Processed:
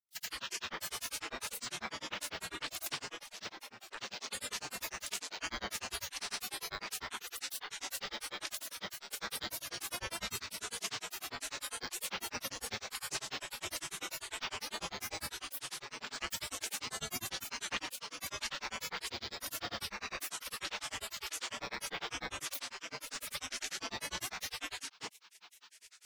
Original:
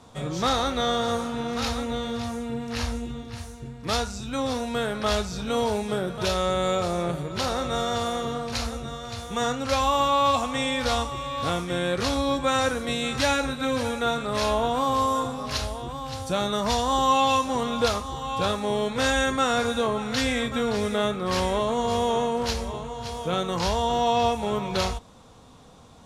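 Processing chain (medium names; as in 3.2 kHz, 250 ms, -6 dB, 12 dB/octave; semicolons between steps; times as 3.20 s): spectral gate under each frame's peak -25 dB weak; compression 6:1, threshold -44 dBFS, peak gain reduction 12 dB; granulator, grains 10 per s, pitch spread up and down by 12 st; trim +10.5 dB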